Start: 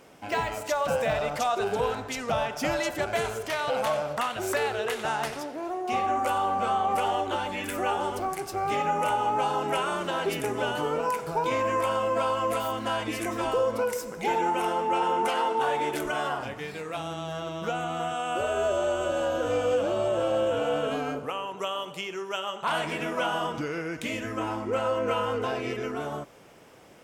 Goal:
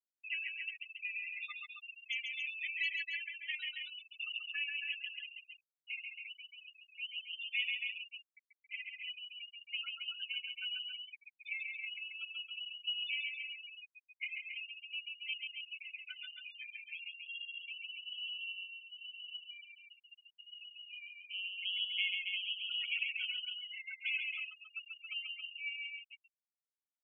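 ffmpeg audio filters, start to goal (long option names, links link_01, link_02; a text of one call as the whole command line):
ffmpeg -i in.wav -af "alimiter=level_in=1.5dB:limit=-24dB:level=0:latency=1:release=454,volume=-1.5dB,highpass=frequency=2600:width_type=q:width=2.8,afwtdn=0.00355,afftfilt=real='re*gte(hypot(re,im),0.0501)':imag='im*gte(hypot(re,im),0.0501)':win_size=1024:overlap=0.75,aecho=1:1:6.5:0.67,aecho=1:1:137|274.1:0.631|0.501,volume=-2.5dB" out.wav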